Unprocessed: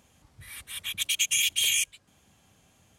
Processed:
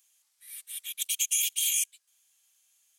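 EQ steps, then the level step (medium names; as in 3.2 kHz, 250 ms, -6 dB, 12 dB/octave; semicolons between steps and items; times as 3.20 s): high-pass 1.3 kHz 6 dB/octave; differentiator; 0.0 dB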